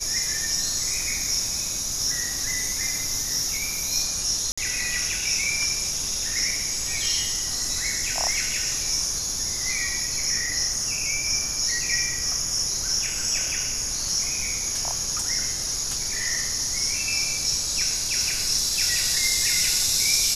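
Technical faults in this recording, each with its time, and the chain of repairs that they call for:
4.52–4.58 gap 55 ms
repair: interpolate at 4.52, 55 ms

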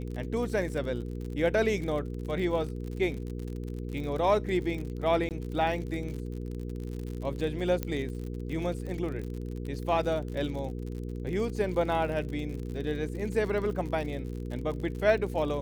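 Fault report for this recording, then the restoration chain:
crackle 59/s -36 dBFS
hum 60 Hz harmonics 8 -36 dBFS
5.29–5.31 gap 18 ms
7.83 pop -17 dBFS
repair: de-click; de-hum 60 Hz, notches 8; interpolate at 5.29, 18 ms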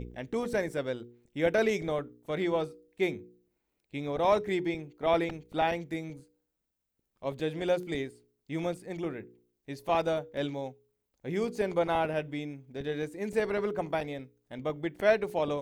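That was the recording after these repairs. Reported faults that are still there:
7.83 pop

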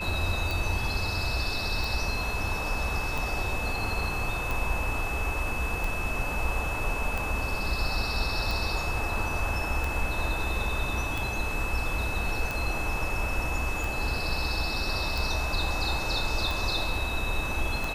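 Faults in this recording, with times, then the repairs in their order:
tick 45 rpm
tone 2600 Hz -33 dBFS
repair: de-click; notch 2600 Hz, Q 30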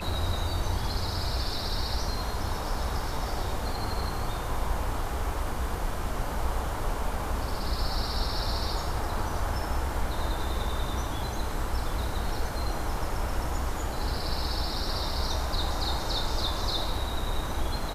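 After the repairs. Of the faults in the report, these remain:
none

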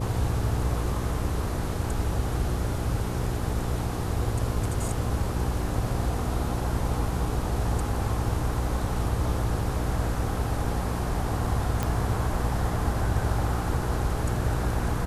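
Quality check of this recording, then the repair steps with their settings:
hum 60 Hz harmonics 8 -31 dBFS
11.83 pop -13 dBFS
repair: de-click; de-hum 60 Hz, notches 8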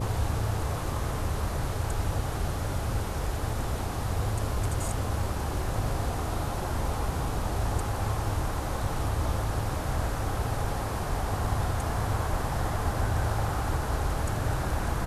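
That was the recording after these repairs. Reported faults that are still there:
none

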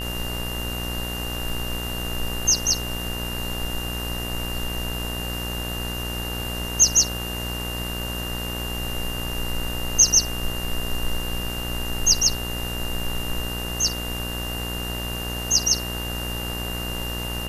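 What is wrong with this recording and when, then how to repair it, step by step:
buzz 60 Hz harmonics 34 -31 dBFS
tone 2800 Hz -32 dBFS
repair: notch 2800 Hz, Q 30; de-hum 60 Hz, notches 34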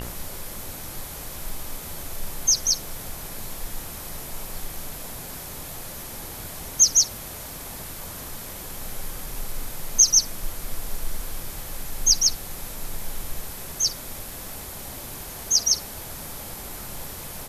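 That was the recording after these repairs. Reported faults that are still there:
none

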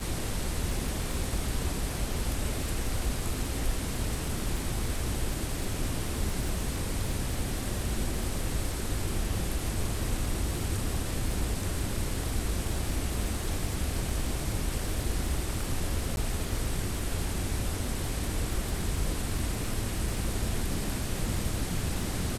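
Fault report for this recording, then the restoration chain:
crackle 41/s -34 dBFS
16.16–16.17 gap 11 ms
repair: de-click; interpolate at 16.16, 11 ms

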